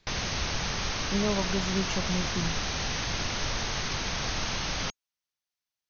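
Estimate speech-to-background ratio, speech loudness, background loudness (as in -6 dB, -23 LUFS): -3.0 dB, -33.5 LUFS, -30.5 LUFS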